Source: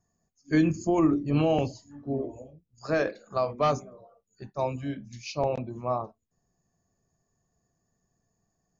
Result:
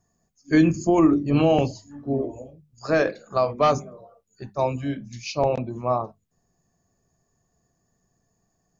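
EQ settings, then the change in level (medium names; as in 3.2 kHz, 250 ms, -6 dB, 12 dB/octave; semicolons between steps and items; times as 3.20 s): hum notches 50/100/150/200 Hz; +5.5 dB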